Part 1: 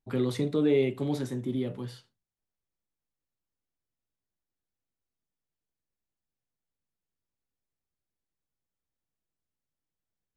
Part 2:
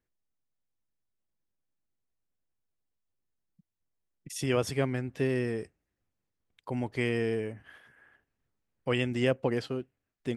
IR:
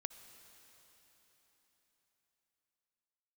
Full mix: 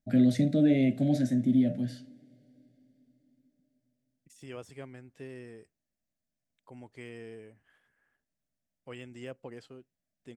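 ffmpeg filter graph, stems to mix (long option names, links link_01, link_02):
-filter_complex "[0:a]firequalizer=gain_entry='entry(110,0);entry(250,7);entry(420,-18);entry(620,9);entry(1000,-30);entry(1600,-2);entry(2900,-8);entry(5700,-2);entry(11000,-7)':delay=0.05:min_phase=1,volume=2dB,asplit=2[link_01][link_02];[link_02]volume=-9.5dB[link_03];[1:a]deesser=0.95,equalizer=frequency=7600:width=3.1:gain=7.5,volume=-15dB[link_04];[2:a]atrim=start_sample=2205[link_05];[link_03][link_05]afir=irnorm=-1:irlink=0[link_06];[link_01][link_04][link_06]amix=inputs=3:normalize=0,lowshelf=frequency=120:gain=-4"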